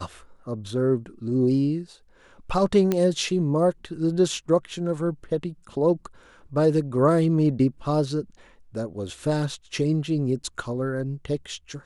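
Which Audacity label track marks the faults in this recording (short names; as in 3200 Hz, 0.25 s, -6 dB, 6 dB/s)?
2.920000	2.920000	pop -10 dBFS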